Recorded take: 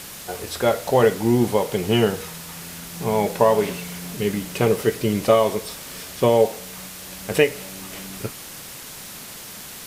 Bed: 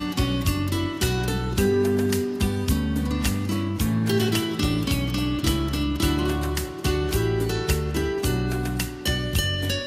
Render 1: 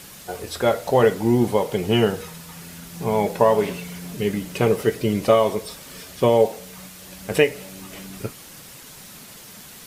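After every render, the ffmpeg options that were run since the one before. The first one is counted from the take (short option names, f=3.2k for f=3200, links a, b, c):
-af "afftdn=nr=6:nf=-38"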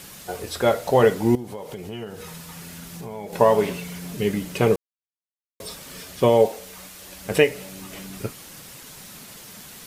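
-filter_complex "[0:a]asettb=1/sr,asplit=3[a][b][c];[a]atrim=end=1.354[d];[b]atrim=start=1.35:end=3.33,asetpts=PTS-STARTPTS,afade=t=in:d=0.004:c=qsin,afade=t=out:st=1.976:d=0.004:c=qsin,acompressor=threshold=-33dB:ratio=4:attack=3.2:release=140:knee=1:detection=peak[e];[c]atrim=start=3.326[f];[d][e]acrossfade=d=0.004:c1=hsin:c2=qsin[g];[g][f]acrossfade=d=0.004:c1=qsin:c2=hsin,asettb=1/sr,asplit=3[h][i][j];[h]atrim=end=6.494[k];[i]atrim=start=6.49:end=7.26,asetpts=PTS-STARTPTS,afade=t=in:d=0.004:c=qsin,afade=t=out:st=0.766:d=0.004:c=qsin,equalizer=f=150:t=o:w=0.77:g=-11.5[l];[j]atrim=start=7.256[m];[k][l]acrossfade=d=0.004:c1=hsin:c2=qsin[n];[n][m]acrossfade=d=0.004:c1=qsin:c2=hsin,asplit=3[o][p][q];[o]atrim=end=4.76,asetpts=PTS-STARTPTS,afade=t=out:st=4.756:d=0.004:c=hsin[r];[p]atrim=start=4.76:end=5.6,asetpts=PTS-STARTPTS,volume=0[s];[q]atrim=start=5.6,asetpts=PTS-STARTPTS,afade=t=in:d=0.004:c=hsin[t];[r][s][t]concat=n=3:v=0:a=1"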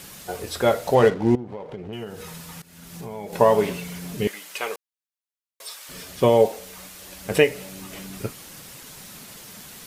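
-filter_complex "[0:a]asettb=1/sr,asplit=3[a][b][c];[a]atrim=end=0.954[d];[b]atrim=start=0.95:end=1.93,asetpts=PTS-STARTPTS,afade=t=in:d=0.004:c=qsin,afade=t=out:st=0.976:d=0.004:c=qsin,adynamicsmooth=sensitivity=5.5:basefreq=1.1k[e];[c]atrim=start=1.926[f];[d][e]acrossfade=d=0.004:c1=hsin:c2=qsin[g];[g][f]acrossfade=d=0.004:c1=qsin:c2=hsin,asettb=1/sr,asplit=3[h][i][j];[h]atrim=end=4.274[k];[i]atrim=start=4.27:end=5.89,asetpts=PTS-STARTPTS,afade=t=in:d=0.004:c=qsin,afade=t=out:st=1.616:d=0.004:c=qsin,highpass=970[l];[j]atrim=start=5.886[m];[k][l]acrossfade=d=0.004:c1=hsin:c2=qsin[n];[n][m]acrossfade=d=0.004:c1=qsin:c2=hsin,asplit=2[o][p];[o]atrim=end=2.62,asetpts=PTS-STARTPTS,afade=t=out:st=2.616:d=0.004:c=hsin:silence=0.105925[q];[p]atrim=start=2.62,asetpts=PTS-STARTPTS,afade=t=in:d=0.41:silence=0.105925[r];[q][r]concat=n=2:v=0:a=1"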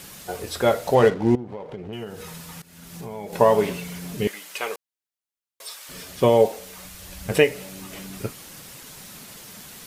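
-filter_complex "[0:a]asplit=3[a][b][c];[a]afade=t=out:st=6.84:d=0.02[d];[b]asubboost=boost=4:cutoff=150,afade=t=in:st=6.84:d=0.02,afade=t=out:st=7.3:d=0.02[e];[c]afade=t=in:st=7.3:d=0.02[f];[d][e][f]amix=inputs=3:normalize=0"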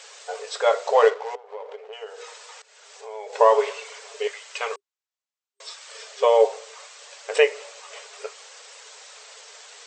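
-af "afftfilt=real='re*between(b*sr/4096,400,8300)':imag='im*between(b*sr/4096,400,8300)':win_size=4096:overlap=0.75,adynamicequalizer=threshold=0.00891:dfrequency=1100:dqfactor=3.8:tfrequency=1100:tqfactor=3.8:attack=5:release=100:ratio=0.375:range=3:mode=boostabove:tftype=bell"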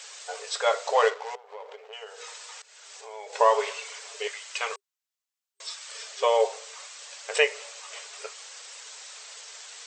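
-af "highpass=f=890:p=1,highshelf=f=5.4k:g=4.5"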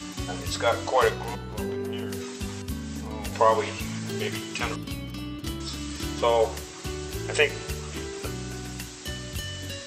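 -filter_complex "[1:a]volume=-10.5dB[a];[0:a][a]amix=inputs=2:normalize=0"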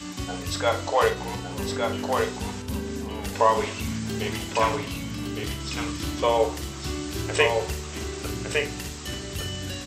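-filter_complex "[0:a]asplit=2[a][b];[b]adelay=44,volume=-9.5dB[c];[a][c]amix=inputs=2:normalize=0,asplit=2[d][e];[e]aecho=0:1:1160:0.631[f];[d][f]amix=inputs=2:normalize=0"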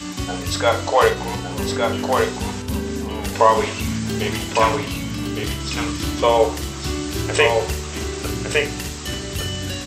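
-af "volume=6dB,alimiter=limit=-2dB:level=0:latency=1"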